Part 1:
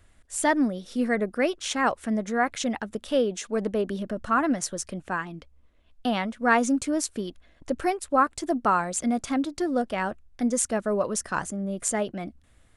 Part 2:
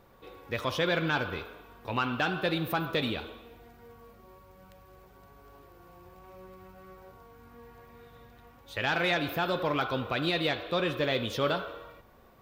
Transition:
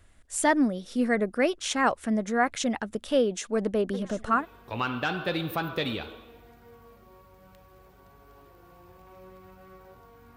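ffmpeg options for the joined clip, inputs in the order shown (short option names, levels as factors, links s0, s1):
-filter_complex "[0:a]asplit=3[s0][s1][s2];[s0]afade=t=out:st=3.93:d=0.02[s3];[s1]aecho=1:1:748|1496|2244|2992:0.2|0.0758|0.0288|0.0109,afade=t=in:st=3.93:d=0.02,afade=t=out:st=4.46:d=0.02[s4];[s2]afade=t=in:st=4.46:d=0.02[s5];[s3][s4][s5]amix=inputs=3:normalize=0,apad=whole_dur=10.36,atrim=end=10.36,atrim=end=4.46,asetpts=PTS-STARTPTS[s6];[1:a]atrim=start=1.51:end=7.53,asetpts=PTS-STARTPTS[s7];[s6][s7]acrossfade=d=0.12:c1=tri:c2=tri"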